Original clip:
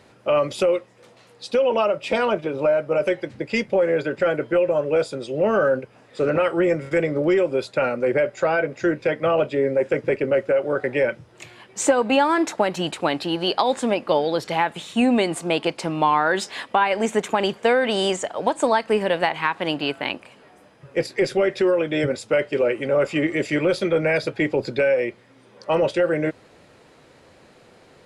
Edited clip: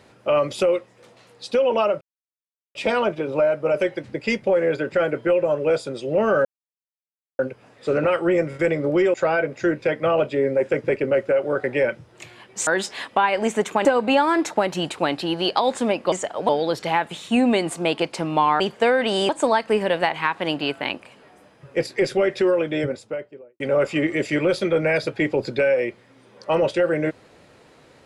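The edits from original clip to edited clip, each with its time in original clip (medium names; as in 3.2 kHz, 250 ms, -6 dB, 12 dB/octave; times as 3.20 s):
2.01 s: insert silence 0.74 s
5.71 s: insert silence 0.94 s
7.46–8.34 s: delete
16.25–17.43 s: move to 11.87 s
18.12–18.49 s: move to 14.14 s
21.72–22.80 s: studio fade out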